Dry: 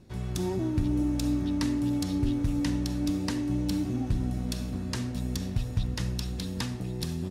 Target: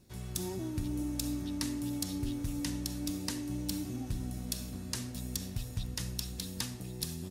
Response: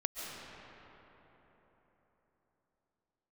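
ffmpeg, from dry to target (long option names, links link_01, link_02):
-af "aemphasis=mode=production:type=75kf,volume=-8.5dB"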